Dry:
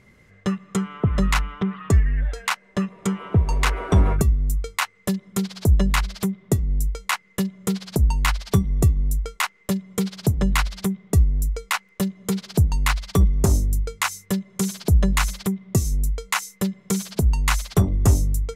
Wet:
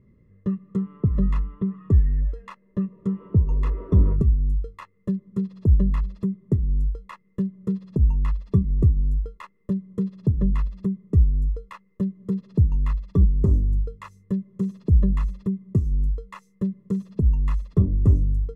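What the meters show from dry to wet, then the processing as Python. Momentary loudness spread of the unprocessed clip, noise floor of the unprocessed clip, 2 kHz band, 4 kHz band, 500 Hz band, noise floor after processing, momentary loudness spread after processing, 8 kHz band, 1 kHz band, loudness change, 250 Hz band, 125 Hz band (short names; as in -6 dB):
8 LU, -56 dBFS, -21.5 dB, under -25 dB, -5.0 dB, -61 dBFS, 10 LU, under -30 dB, -15.0 dB, -1.0 dB, -1.0 dB, -0.5 dB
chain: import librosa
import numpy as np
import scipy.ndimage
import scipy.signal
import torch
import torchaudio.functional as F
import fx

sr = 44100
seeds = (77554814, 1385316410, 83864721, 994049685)

y = scipy.signal.lfilter(np.full(58, 1.0 / 58), 1.0, x)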